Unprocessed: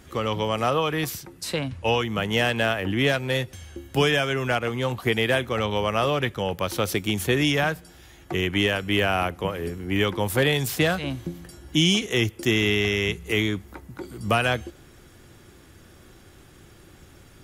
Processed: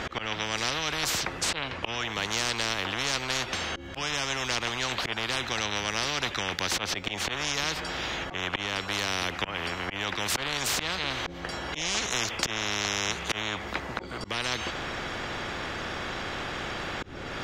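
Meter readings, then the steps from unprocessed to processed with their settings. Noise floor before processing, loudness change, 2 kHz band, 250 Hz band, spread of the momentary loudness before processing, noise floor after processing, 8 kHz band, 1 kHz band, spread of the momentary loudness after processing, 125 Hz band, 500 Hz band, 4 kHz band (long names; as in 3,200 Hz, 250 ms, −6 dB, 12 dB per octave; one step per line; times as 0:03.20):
−51 dBFS, −5.5 dB, −3.0 dB, −11.5 dB, 10 LU, −39 dBFS, +4.5 dB, −3.5 dB, 6 LU, −12.0 dB, −11.0 dB, −1.0 dB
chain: high-frequency loss of the air 180 metres
volume swells 410 ms
every bin compressed towards the loudest bin 10 to 1
level +2 dB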